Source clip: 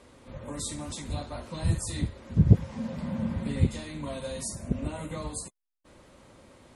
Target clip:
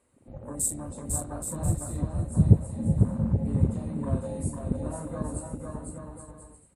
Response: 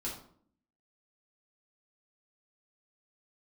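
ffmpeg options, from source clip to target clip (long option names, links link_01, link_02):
-filter_complex "[0:a]afwtdn=0.0112,highshelf=frequency=6900:width_type=q:width=3:gain=7,bandreject=frequency=3400:width=9.2,asplit=2[link_01][link_02];[link_02]aecho=0:1:500|825|1036|1174|1263:0.631|0.398|0.251|0.158|0.1[link_03];[link_01][link_03]amix=inputs=2:normalize=0"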